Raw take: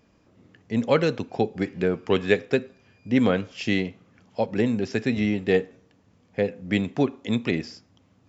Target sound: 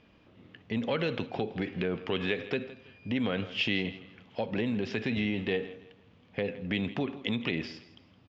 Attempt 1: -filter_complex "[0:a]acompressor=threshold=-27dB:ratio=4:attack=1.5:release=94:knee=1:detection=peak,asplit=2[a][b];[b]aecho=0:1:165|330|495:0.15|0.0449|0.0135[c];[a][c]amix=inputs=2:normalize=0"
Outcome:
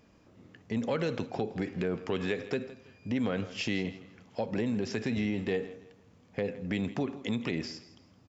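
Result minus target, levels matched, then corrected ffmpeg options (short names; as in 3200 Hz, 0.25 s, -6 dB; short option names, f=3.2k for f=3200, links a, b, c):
4000 Hz band -4.5 dB
-filter_complex "[0:a]acompressor=threshold=-27dB:ratio=4:attack=1.5:release=94:knee=1:detection=peak,lowpass=f=3.2k:t=q:w=2.4,asplit=2[a][b];[b]aecho=0:1:165|330|495:0.15|0.0449|0.0135[c];[a][c]amix=inputs=2:normalize=0"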